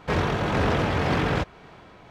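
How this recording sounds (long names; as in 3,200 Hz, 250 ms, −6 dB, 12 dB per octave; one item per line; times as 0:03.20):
tremolo triangle 1.9 Hz, depth 30%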